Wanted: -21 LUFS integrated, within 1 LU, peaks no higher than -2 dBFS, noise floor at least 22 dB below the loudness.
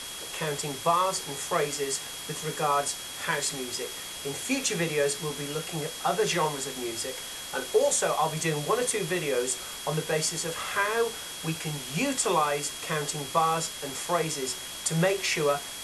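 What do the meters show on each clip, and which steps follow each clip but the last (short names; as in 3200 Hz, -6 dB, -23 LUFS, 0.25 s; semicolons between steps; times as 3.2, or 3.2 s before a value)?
steady tone 3300 Hz; tone level -42 dBFS; noise floor -39 dBFS; noise floor target -51 dBFS; loudness -28.5 LUFS; peak -11.0 dBFS; loudness target -21.0 LUFS
-> notch 3300 Hz, Q 30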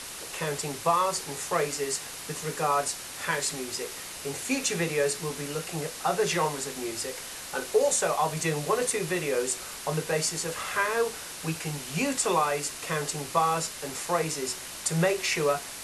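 steady tone none; noise floor -40 dBFS; noise floor target -51 dBFS
-> denoiser 11 dB, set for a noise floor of -40 dBFS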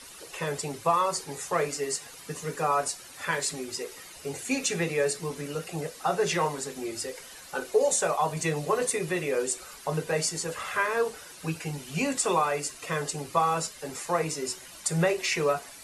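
noise floor -47 dBFS; noise floor target -51 dBFS
-> denoiser 6 dB, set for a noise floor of -47 dBFS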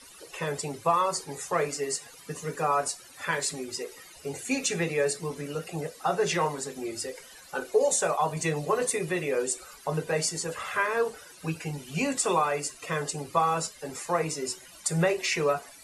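noise floor -50 dBFS; noise floor target -51 dBFS
-> denoiser 6 dB, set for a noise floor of -50 dBFS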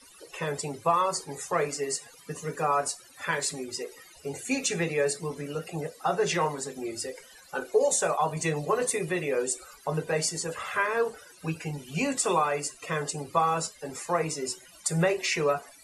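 noise floor -53 dBFS; loudness -29.0 LUFS; peak -11.5 dBFS; loudness target -21.0 LUFS
-> gain +8 dB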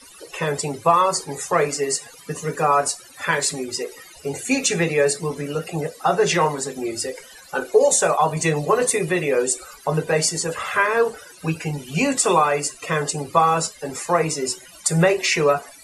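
loudness -21.0 LUFS; peak -3.5 dBFS; noise floor -45 dBFS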